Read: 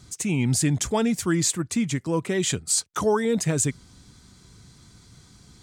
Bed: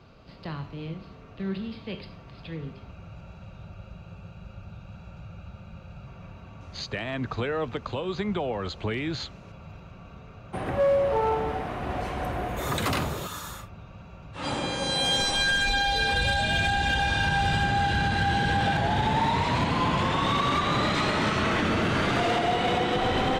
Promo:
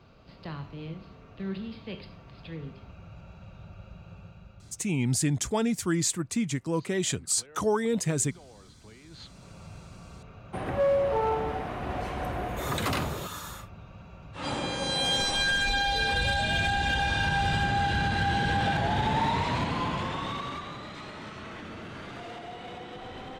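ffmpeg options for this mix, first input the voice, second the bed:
-filter_complex "[0:a]adelay=4600,volume=-4dB[a];[1:a]volume=18dB,afade=t=out:st=4.18:d=0.74:silence=0.1,afade=t=in:st=9.09:d=0.49:silence=0.0891251,afade=t=out:st=19.27:d=1.52:silence=0.188365[b];[a][b]amix=inputs=2:normalize=0"

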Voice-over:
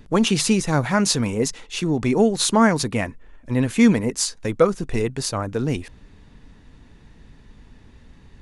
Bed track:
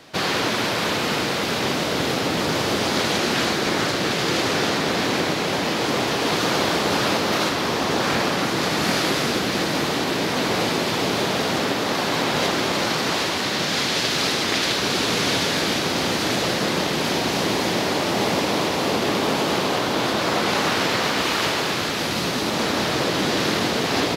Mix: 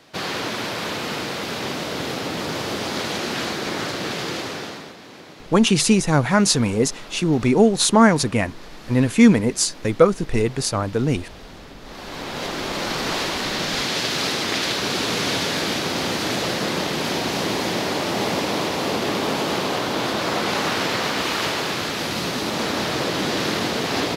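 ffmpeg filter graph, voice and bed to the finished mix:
-filter_complex "[0:a]adelay=5400,volume=2.5dB[a];[1:a]volume=14.5dB,afade=t=out:st=4.18:d=0.78:silence=0.158489,afade=t=in:st=11.81:d=1.34:silence=0.112202[b];[a][b]amix=inputs=2:normalize=0"

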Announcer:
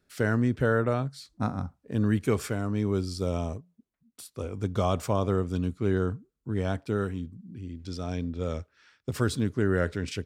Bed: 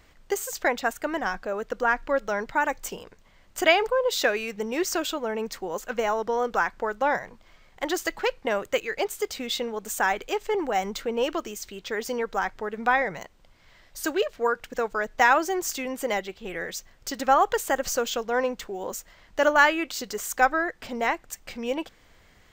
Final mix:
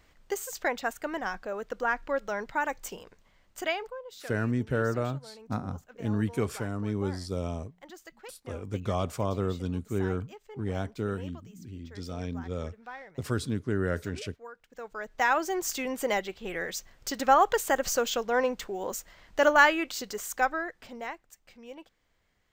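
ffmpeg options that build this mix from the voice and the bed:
-filter_complex "[0:a]adelay=4100,volume=-3.5dB[a];[1:a]volume=15dB,afade=t=out:st=3.17:d=0.89:silence=0.158489,afade=t=in:st=14.67:d=1.18:silence=0.1,afade=t=out:st=19.57:d=1.72:silence=0.16788[b];[a][b]amix=inputs=2:normalize=0"

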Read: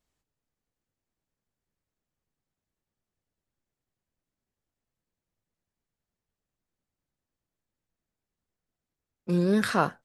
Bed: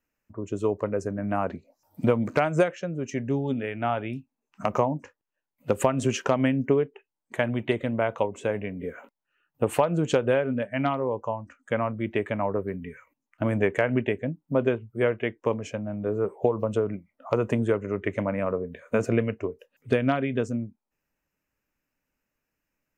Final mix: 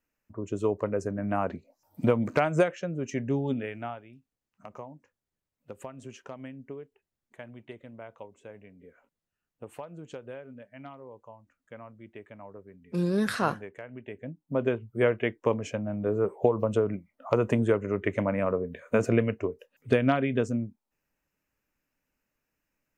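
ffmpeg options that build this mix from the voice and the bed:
-filter_complex "[0:a]adelay=3650,volume=-2.5dB[a];[1:a]volume=17.5dB,afade=t=out:st=3.52:d=0.5:silence=0.133352,afade=t=in:st=14.02:d=0.98:silence=0.112202[b];[a][b]amix=inputs=2:normalize=0"

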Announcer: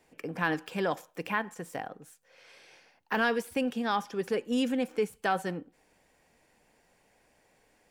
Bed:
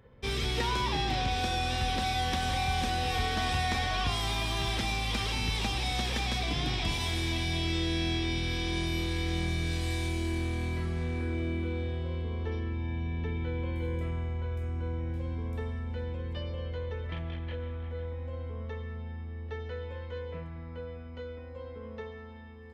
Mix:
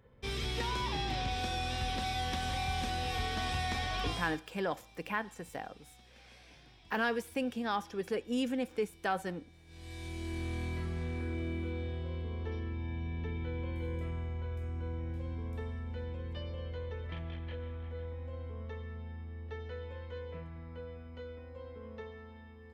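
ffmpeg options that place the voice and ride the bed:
-filter_complex "[0:a]adelay=3800,volume=-4.5dB[a];[1:a]volume=19.5dB,afade=t=out:st=4.07:d=0.34:silence=0.0630957,afade=t=in:st=9.66:d=0.89:silence=0.0595662[b];[a][b]amix=inputs=2:normalize=0"

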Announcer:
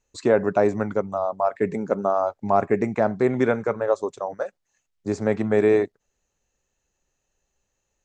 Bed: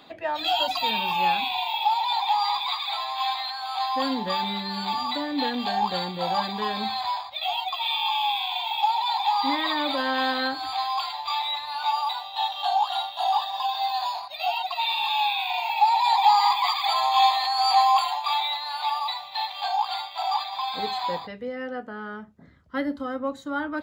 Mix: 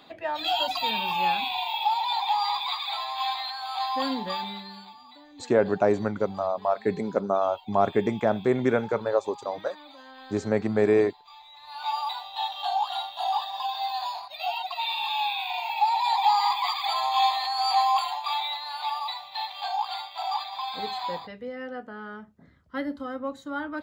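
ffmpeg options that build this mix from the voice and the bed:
-filter_complex "[0:a]adelay=5250,volume=-2.5dB[a];[1:a]volume=16.5dB,afade=t=out:st=4.11:d=0.82:silence=0.1,afade=t=in:st=11.54:d=0.4:silence=0.11885[b];[a][b]amix=inputs=2:normalize=0"

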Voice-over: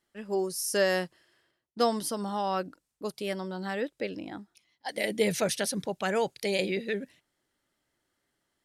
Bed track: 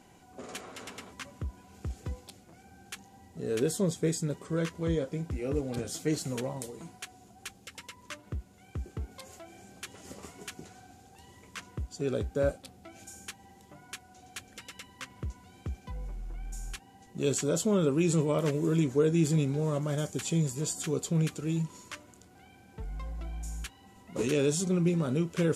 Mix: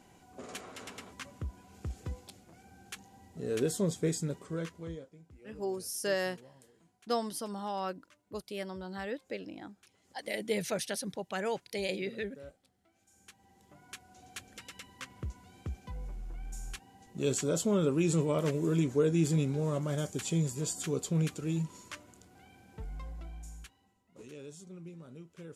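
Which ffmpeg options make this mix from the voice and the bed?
-filter_complex "[0:a]adelay=5300,volume=-6dB[a];[1:a]volume=17.5dB,afade=t=out:st=4.2:d=0.91:silence=0.105925,afade=t=in:st=13.06:d=1.16:silence=0.105925,afade=t=out:st=22.77:d=1.23:silence=0.11885[b];[a][b]amix=inputs=2:normalize=0"

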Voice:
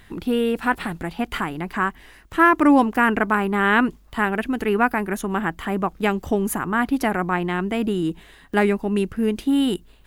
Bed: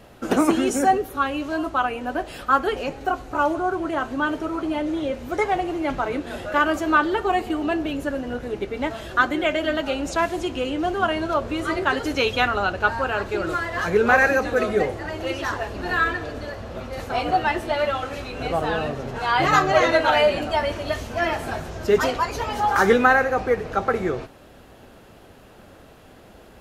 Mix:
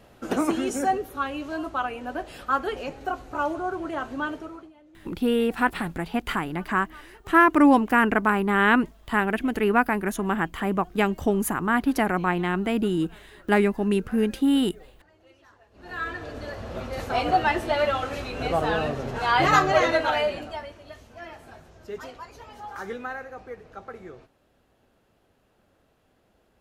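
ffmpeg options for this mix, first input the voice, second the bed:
-filter_complex "[0:a]adelay=4950,volume=-1.5dB[a];[1:a]volume=23.5dB,afade=t=out:st=4.22:d=0.5:silence=0.0630957,afade=t=in:st=15.71:d=1.04:silence=0.0354813,afade=t=out:st=19.48:d=1.25:silence=0.133352[b];[a][b]amix=inputs=2:normalize=0"

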